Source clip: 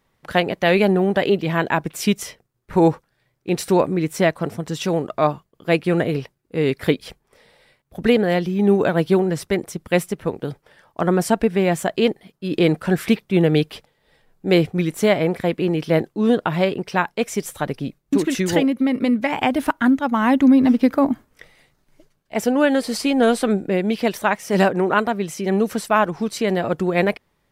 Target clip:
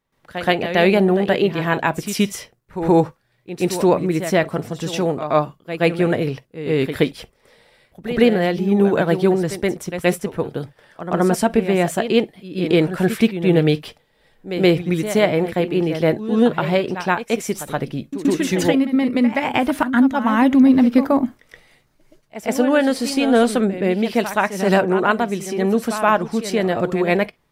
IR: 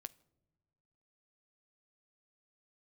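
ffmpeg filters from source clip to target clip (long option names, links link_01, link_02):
-filter_complex "[0:a]asplit=2[link_01][link_02];[1:a]atrim=start_sample=2205,atrim=end_sample=3087,adelay=124[link_03];[link_02][link_03]afir=irnorm=-1:irlink=0,volume=16dB[link_04];[link_01][link_04]amix=inputs=2:normalize=0,volume=-10dB"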